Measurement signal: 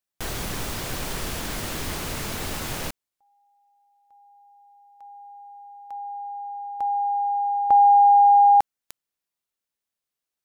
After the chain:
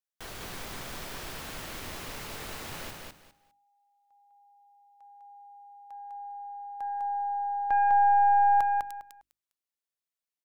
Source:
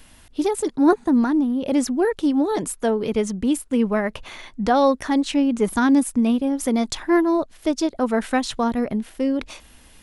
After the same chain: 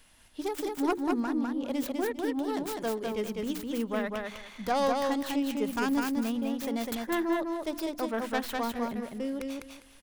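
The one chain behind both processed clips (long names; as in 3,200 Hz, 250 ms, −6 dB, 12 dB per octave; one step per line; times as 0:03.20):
stylus tracing distortion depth 0.34 ms
low-shelf EQ 480 Hz −5 dB
mains-hum notches 50/100/150/200/250/300/350 Hz
on a send: repeating echo 202 ms, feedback 21%, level −3 dB
on the sum: level −8.5 dB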